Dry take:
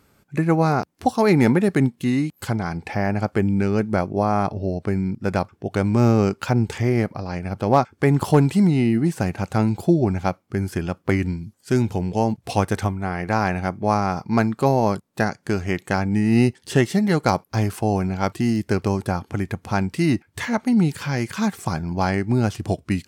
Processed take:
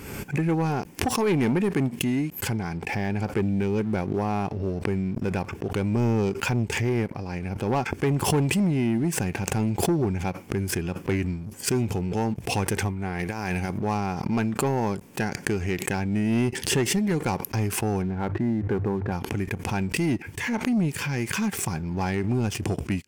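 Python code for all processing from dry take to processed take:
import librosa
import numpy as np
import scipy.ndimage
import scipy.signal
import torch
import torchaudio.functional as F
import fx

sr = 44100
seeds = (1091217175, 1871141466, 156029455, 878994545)

y = fx.chain(x, sr, fx.high_shelf(hz=4900.0, db=11.5),
    fx.over_compress(threshold_db=-23.0, ratio=-0.5), at=(13.19, 13.78))
y = fx.chain(y, sr, fx.steep_lowpass(hz=1900.0, slope=36),
    fx.hum_notches(base_hz=50, count=3), at=(18.02, 19.12))
y = fx.graphic_eq_31(y, sr, hz=(400, 630, 1250, 2500, 4000), db=(3, -7, -8, 5, -9))
y = fx.leveller(y, sr, passes=2)
y = fx.pre_swell(y, sr, db_per_s=49.0)
y = y * librosa.db_to_amplitude(-11.0)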